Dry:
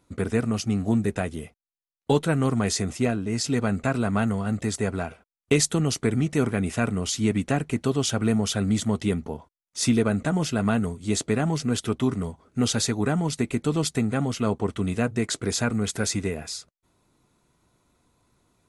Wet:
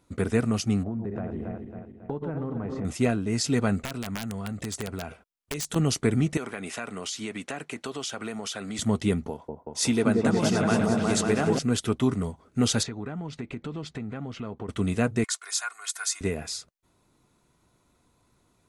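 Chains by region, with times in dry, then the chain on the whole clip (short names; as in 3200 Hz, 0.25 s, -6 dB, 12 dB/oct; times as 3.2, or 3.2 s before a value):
0.83–2.85 regenerating reverse delay 0.137 s, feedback 68%, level -8 dB + LPF 1100 Hz + compressor 5:1, threshold -28 dBFS
3.8–5.76 dynamic EQ 6300 Hz, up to +4 dB, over -38 dBFS, Q 1.2 + compressor, threshold -29 dBFS + wrapped overs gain 23 dB
6.37–8.79 weighting filter A + compressor 4:1, threshold -30 dBFS
9.3–11.59 low shelf 180 Hz -10 dB + repeats that get brighter 0.182 s, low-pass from 750 Hz, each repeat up 1 oct, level 0 dB
12.83–14.69 LPF 3300 Hz + compressor 3:1, threshold -34 dBFS
15.24–16.21 HPF 1100 Hz 24 dB/oct + dynamic EQ 2600 Hz, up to -7 dB, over -45 dBFS, Q 0.81 + comb 2.8 ms, depth 71%
whole clip: dry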